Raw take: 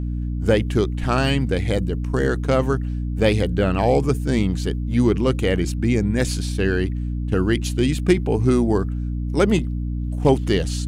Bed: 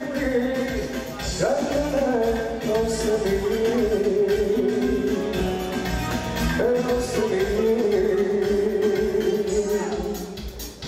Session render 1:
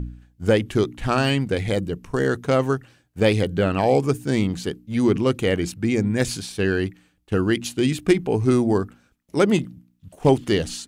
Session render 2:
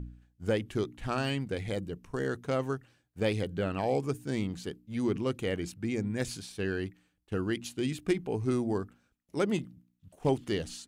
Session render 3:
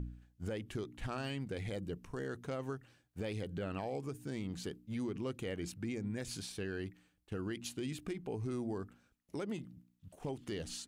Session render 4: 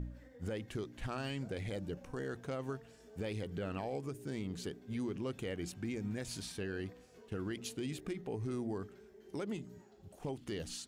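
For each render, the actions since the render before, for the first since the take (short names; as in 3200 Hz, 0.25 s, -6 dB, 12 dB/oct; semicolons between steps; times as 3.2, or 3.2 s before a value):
de-hum 60 Hz, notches 5
gain -11 dB
compressor 4:1, threshold -35 dBFS, peak gain reduction 11.5 dB; limiter -30.5 dBFS, peak gain reduction 6.5 dB
add bed -36 dB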